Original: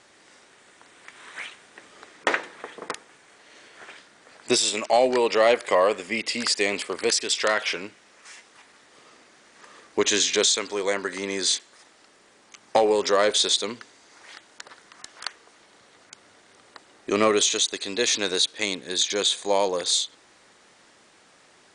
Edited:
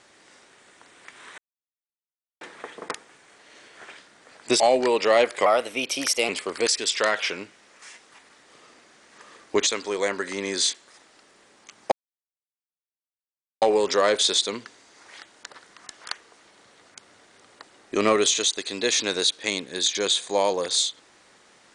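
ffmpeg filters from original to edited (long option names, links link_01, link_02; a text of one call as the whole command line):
ffmpeg -i in.wav -filter_complex "[0:a]asplit=8[link_01][link_02][link_03][link_04][link_05][link_06][link_07][link_08];[link_01]atrim=end=1.38,asetpts=PTS-STARTPTS,afade=type=out:start_time=1.376:duration=0.004:curve=hsin[link_09];[link_02]atrim=start=1.38:end=2.41,asetpts=PTS-STARTPTS,volume=0[link_10];[link_03]atrim=start=2.41:end=4.602,asetpts=PTS-STARTPTS,afade=type=in:duration=0.004:curve=hsin[link_11];[link_04]atrim=start=4.898:end=5.764[link_12];[link_05]atrim=start=5.76:end=6.72,asetpts=PTS-STARTPTS,asetrate=51156,aresample=44100[link_13];[link_06]atrim=start=6.716:end=10.102[link_14];[link_07]atrim=start=10.518:end=12.77,asetpts=PTS-STARTPTS,afade=type=out:start_time=2.248:duration=0.004:curve=hsin,apad=pad_dur=1.7[link_15];[link_08]atrim=start=12.77,asetpts=PTS-STARTPTS,afade=type=in:duration=0.004:curve=hsin[link_16];[link_09][link_10][link_11]concat=n=3:v=0:a=1[link_17];[link_17][link_12]acrossfade=duration=0.004:curve1=hsin:curve2=hsin[link_18];[link_18][link_13]acrossfade=duration=0.004:curve1=hsin:curve2=hsin[link_19];[link_19][link_14]acrossfade=duration=0.004:curve1=hsin:curve2=hsin[link_20];[link_15][link_16]concat=n=2:v=0:a=1[link_21];[link_20][link_21]acrossfade=duration=0.004:curve1=hsin:curve2=hsin" out.wav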